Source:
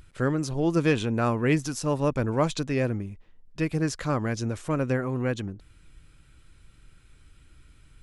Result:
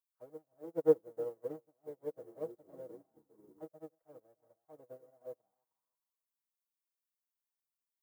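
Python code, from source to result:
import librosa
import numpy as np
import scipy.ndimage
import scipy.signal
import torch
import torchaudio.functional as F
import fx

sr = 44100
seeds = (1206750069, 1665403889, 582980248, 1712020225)

y = fx.halfwave_hold(x, sr)
y = fx.echo_feedback(y, sr, ms=310, feedback_pct=31, wet_db=-12.0)
y = fx.auto_wah(y, sr, base_hz=490.0, top_hz=1100.0, q=6.2, full_db=-17.5, direction='down')
y = fx.echo_pitch(y, sr, ms=305, semitones=-4, count=3, db_per_echo=-6.0, at=(1.56, 3.66))
y = y + 0.55 * np.pad(y, (int(6.3 * sr / 1000.0), 0))[:len(y)]
y = fx.dmg_noise_colour(y, sr, seeds[0], colour='blue', level_db=-55.0)
y = fx.peak_eq(y, sr, hz=3500.0, db=-5.0, octaves=2.3)
y = fx.notch(y, sr, hz=2500.0, q=10.0)
y = fx.upward_expand(y, sr, threshold_db=-42.0, expansion=2.5)
y = y * librosa.db_to_amplitude(-1.5)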